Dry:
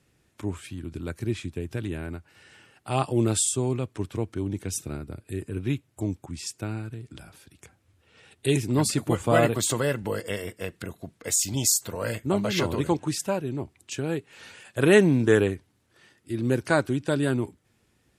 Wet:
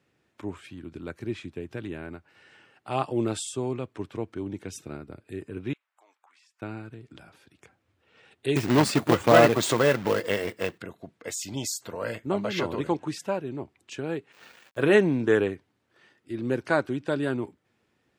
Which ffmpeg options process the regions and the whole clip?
ffmpeg -i in.wav -filter_complex "[0:a]asettb=1/sr,asplit=3[link_01][link_02][link_03];[link_01]atrim=end=5.734[link_04];[link_02]atrim=start=5.73:end=6.62,asetpts=PTS-STARTPTS,afade=type=in:duration=0.004:curve=qsin,afade=type=out:start_time=0.886:duration=0.004:curve=qsin,highpass=frequency=1100:width=0.5412,highpass=frequency=1100:width=1.3066,tiltshelf=frequency=1500:gain=9,acompressor=threshold=-54dB:ratio=5:attack=3.2:release=140:knee=1:detection=peak[link_05];[link_03]atrim=start=6.616[link_06];[link_04][link_05]acrossfade=duration=0.004:curve1=hsin:curve2=qsin[link_07];[link_07][link_06]acrossfade=duration=0.004:curve1=qsin:curve2=hsin,asettb=1/sr,asplit=3[link_08][link_09][link_10];[link_08]atrim=end=8.564[link_11];[link_09]atrim=start=8.56:end=10.78,asetpts=PTS-STARTPTS,afade=type=in:duration=0.004:curve=qsin,afade=type=out:start_time=2.216:duration=0.004:curve=qsin,acontrast=57,acrusher=bits=2:mode=log:mix=0:aa=0.000001[link_12];[link_10]atrim=start=10.776[link_13];[link_11][link_12]acrossfade=duration=0.004:curve1=hsin:curve2=qsin[link_14];[link_14][link_13]acrossfade=duration=0.004:curve1=qsin:curve2=hsin,asettb=1/sr,asplit=3[link_15][link_16][link_17];[link_15]atrim=end=14.324[link_18];[link_16]atrim=start=14.32:end=14.96,asetpts=PTS-STARTPTS,afade=type=in:duration=0.004:curve=qsin,afade=type=out:start_time=0.636:duration=0.004:curve=qsin,aeval=exprs='val(0)*gte(abs(val(0)),0.00631)':channel_layout=same,asplit=2[link_19][link_20];[link_20]adelay=14,volume=-11dB[link_21];[link_19][link_21]amix=inputs=2:normalize=0,atrim=end_sample=28224[link_22];[link_17]atrim=start=14.956[link_23];[link_18][link_22]acrossfade=duration=0.004:curve1=hsin:curve2=qsin[link_24];[link_24][link_23]acrossfade=duration=0.004:curve1=qsin:curve2=hsin,highpass=frequency=270:poles=1,equalizer=frequency=11000:width=0.46:gain=-14.5" out.wav

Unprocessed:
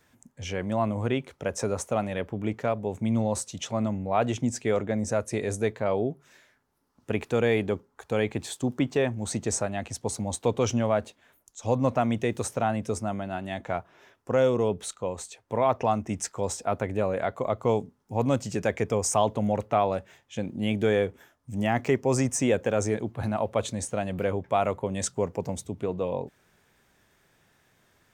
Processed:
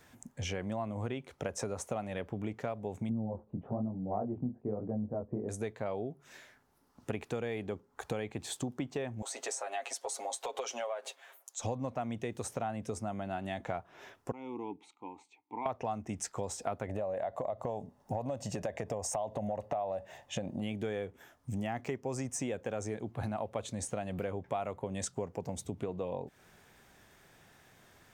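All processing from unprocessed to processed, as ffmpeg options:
ffmpeg -i in.wav -filter_complex "[0:a]asettb=1/sr,asplit=3[link_01][link_02][link_03];[link_01]atrim=end=3.094[link_04];[link_02]atrim=start=3.09:end=5.49,asetpts=PTS-STARTPTS,afade=type=in:duration=0.004:curve=qsin,afade=type=out:start_time=2.396:duration=0.004:curve=qsin,lowpass=frequency=1000:width=0.5412,lowpass=frequency=1000:width=1.3066,equalizer=frequency=190:width=0.47:gain=10,flanger=delay=17:depth=7.2:speed=1.1[link_05];[link_03]atrim=start=5.486[link_06];[link_04][link_05]acrossfade=duration=0.004:curve1=hsin:curve2=qsin[link_07];[link_07][link_06]acrossfade=duration=0.004:curve1=qsin:curve2=hsin,asettb=1/sr,asplit=3[link_08][link_09][link_10];[link_08]atrim=end=9.224[link_11];[link_09]atrim=start=9.22:end=11.6,asetpts=PTS-STARTPTS,afade=type=in:duration=0.004:curve=qsin,afade=type=out:start_time=2.376:duration=0.004:curve=qsin,highpass=frequency=490:width=0.5412,highpass=frequency=490:width=1.3066,acompressor=threshold=-38dB:ratio=3:attack=3.2:release=140:knee=1:detection=peak,aecho=1:1:7.4:0.68,atrim=end_sample=104958[link_12];[link_10]atrim=start=11.596[link_13];[link_11][link_12]acrossfade=duration=0.004:curve1=hsin:curve2=qsin[link_14];[link_14][link_13]acrossfade=duration=0.004:curve1=qsin:curve2=hsin,asettb=1/sr,asplit=3[link_15][link_16][link_17];[link_15]atrim=end=14.324[link_18];[link_16]atrim=start=14.32:end=15.66,asetpts=PTS-STARTPTS,afade=type=in:duration=0.004:curve=qsin,afade=type=out:start_time=1.336:duration=0.004:curve=qsin,asplit=3[link_19][link_20][link_21];[link_19]bandpass=frequency=300:width_type=q:width=8,volume=0dB[link_22];[link_20]bandpass=frequency=870:width_type=q:width=8,volume=-6dB[link_23];[link_21]bandpass=frequency=2240:width_type=q:width=8,volume=-9dB[link_24];[link_22][link_23][link_24]amix=inputs=3:normalize=0,lowshelf=frequency=390:gain=-6[link_25];[link_17]atrim=start=15.656[link_26];[link_18][link_25]acrossfade=duration=0.004:curve1=hsin:curve2=qsin[link_27];[link_27][link_26]acrossfade=duration=0.004:curve1=qsin:curve2=hsin,asettb=1/sr,asplit=3[link_28][link_29][link_30];[link_28]atrim=end=16.884[link_31];[link_29]atrim=start=16.88:end=20.62,asetpts=PTS-STARTPTS,afade=type=in:duration=0.004:curve=qsin,afade=type=out:start_time=3.736:duration=0.004:curve=qsin,equalizer=frequency=590:width=2.2:gain=15,aecho=1:1:1.1:0.39,atrim=end_sample=164934,acompressor=threshold=-25dB:ratio=3:attack=3.2:release=140:knee=1:detection=peak[link_32];[link_30]atrim=start=20.616[link_33];[link_31][link_32]acrossfade=duration=0.004:curve1=hsin:curve2=qsin[link_34];[link_34][link_33]acrossfade=duration=0.004:curve1=qsin:curve2=hsin,acompressor=threshold=-38dB:ratio=6,equalizer=frequency=750:width_type=o:width=0.27:gain=3.5,volume=3.5dB" out.wav

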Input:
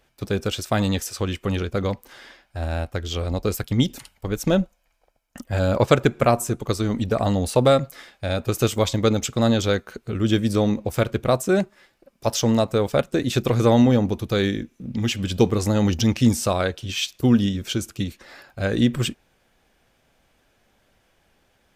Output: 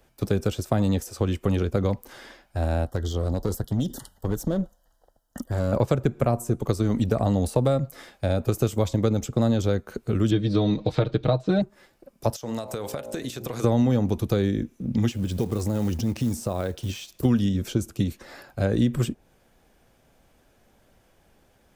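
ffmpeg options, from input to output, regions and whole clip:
ffmpeg -i in.wav -filter_complex "[0:a]asettb=1/sr,asplit=3[link_01][link_02][link_03];[link_01]atrim=end=2.864[link_04];[link_02]atrim=start=2.86:end=5.73,asetpts=PTS-STARTPTS,afade=type=in:duration=0.004:curve=qsin,afade=type=out:start_time=2.866:duration=0.004:curve=qsin,asuperstop=centerf=2400:order=20:qfactor=2.6,acompressor=threshold=-25dB:ratio=3:attack=3.2:release=140:knee=1:detection=peak,aeval=exprs='clip(val(0),-1,0.0501)':channel_layout=same[link_05];[link_03]atrim=start=5.726[link_06];[link_04][link_05]acrossfade=duration=0.004:curve1=hsin:curve2=qsin[link_07];[link_07][link_06]acrossfade=duration=0.004:curve1=qsin:curve2=hsin,asettb=1/sr,asplit=3[link_08][link_09][link_10];[link_08]atrim=end=10.314[link_11];[link_09]atrim=start=10.31:end=11.62,asetpts=PTS-STARTPTS,afade=type=in:duration=0.004:curve=qsin,afade=type=out:start_time=1.306:duration=0.004:curve=qsin,acrossover=split=2800[link_12][link_13];[link_13]acompressor=threshold=-42dB:ratio=4:attack=1:release=60[link_14];[link_12][link_14]amix=inputs=2:normalize=0,lowpass=frequency=4000:width_type=q:width=5.8,aecho=1:1:6.5:0.72,atrim=end_sample=57771[link_15];[link_10]atrim=start=11.616[link_16];[link_11][link_15]acrossfade=duration=0.004:curve1=hsin:curve2=qsin[link_17];[link_17][link_16]acrossfade=duration=0.004:curve1=qsin:curve2=hsin,asettb=1/sr,asplit=3[link_18][link_19][link_20];[link_18]atrim=end=12.364[link_21];[link_19]atrim=start=12.36:end=13.64,asetpts=PTS-STARTPTS,afade=type=in:duration=0.004:curve=qsin,afade=type=out:start_time=1.276:duration=0.004:curve=qsin,tiltshelf=frequency=640:gain=-8,bandreject=frequency=58.1:width_type=h:width=4,bandreject=frequency=116.2:width_type=h:width=4,bandreject=frequency=174.3:width_type=h:width=4,bandreject=frequency=232.4:width_type=h:width=4,bandreject=frequency=290.5:width_type=h:width=4,bandreject=frequency=348.6:width_type=h:width=4,bandreject=frequency=406.7:width_type=h:width=4,bandreject=frequency=464.8:width_type=h:width=4,bandreject=frequency=522.9:width_type=h:width=4,bandreject=frequency=581:width_type=h:width=4,bandreject=frequency=639.1:width_type=h:width=4,bandreject=frequency=697.2:width_type=h:width=4,bandreject=frequency=755.3:width_type=h:width=4,bandreject=frequency=813.4:width_type=h:width=4,bandreject=frequency=871.5:width_type=h:width=4,bandreject=frequency=929.6:width_type=h:width=4,bandreject=frequency=987.7:width_type=h:width=4,bandreject=frequency=1045.8:width_type=h:width=4,acompressor=threshold=-29dB:ratio=16:attack=3.2:release=140:knee=1:detection=peak[link_22];[link_20]atrim=start=13.636[link_23];[link_21][link_22]acrossfade=duration=0.004:curve1=hsin:curve2=qsin[link_24];[link_24][link_23]acrossfade=duration=0.004:curve1=qsin:curve2=hsin,asettb=1/sr,asplit=3[link_25][link_26][link_27];[link_25]atrim=end=15.114[link_28];[link_26]atrim=start=15.11:end=17.25,asetpts=PTS-STARTPTS,afade=type=in:duration=0.004:curve=qsin,afade=type=out:start_time=2.136:duration=0.004:curve=qsin,acompressor=threshold=-28dB:ratio=3:attack=3.2:release=140:knee=1:detection=peak,acrusher=bits=5:mode=log:mix=0:aa=0.000001[link_29];[link_27]atrim=start=17.246[link_30];[link_28][link_29]acrossfade=duration=0.004:curve1=hsin:curve2=qsin[link_31];[link_31][link_30]acrossfade=duration=0.004:curve1=qsin:curve2=hsin,equalizer=frequency=2700:width=0.47:gain=-7,acrossover=split=160|980[link_32][link_33][link_34];[link_32]acompressor=threshold=-29dB:ratio=4[link_35];[link_33]acompressor=threshold=-27dB:ratio=4[link_36];[link_34]acompressor=threshold=-42dB:ratio=4[link_37];[link_35][link_36][link_37]amix=inputs=3:normalize=0,volume=4.5dB" out.wav

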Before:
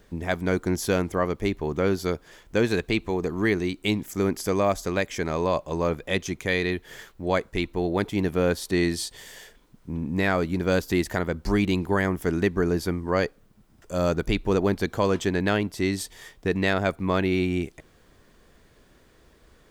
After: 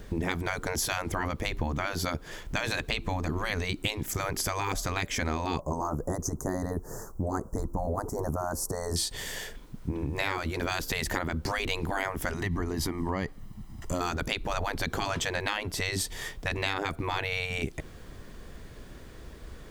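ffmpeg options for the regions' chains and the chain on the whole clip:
ffmpeg -i in.wav -filter_complex "[0:a]asettb=1/sr,asplit=3[link_01][link_02][link_03];[link_01]atrim=end=5.604[link_04];[link_02]atrim=start=5.6:end=8.96,asetpts=PTS-STARTPTS,afade=type=in:duration=0.004:curve=qsin,afade=type=out:start_time=3.356:duration=0.004:curve=qsin,asuperstop=centerf=2700:order=8:qfactor=0.57,equalizer=frequency=2000:width_type=o:width=0.34:gain=13[link_05];[link_03]atrim=start=8.956[link_06];[link_04][link_05]acrossfade=duration=0.004:curve1=hsin:curve2=qsin[link_07];[link_07][link_06]acrossfade=duration=0.004:curve1=qsin:curve2=hsin,asettb=1/sr,asplit=3[link_08][link_09][link_10];[link_08]atrim=end=12.334[link_11];[link_09]atrim=start=12.33:end=14.01,asetpts=PTS-STARTPTS,afade=type=in:duration=0.004:curve=qsin,afade=type=out:start_time=1.676:duration=0.004:curve=qsin,aecho=1:1:1:0.57,atrim=end_sample=74088,acompressor=threshold=-25dB:ratio=6:attack=3.2:release=140:knee=1:detection=peak[link_12];[link_10]atrim=start=14.006[link_13];[link_11][link_12]acrossfade=duration=0.004:curve1=hsin:curve2=qsin[link_14];[link_14][link_13]acrossfade=duration=0.004:curve1=qsin:curve2=hsin,afftfilt=real='re*lt(hypot(re,im),0.178)':imag='im*lt(hypot(re,im),0.178)':win_size=1024:overlap=0.75,lowshelf=frequency=180:gain=7.5,acompressor=threshold=-34dB:ratio=4,volume=7dB" out.wav

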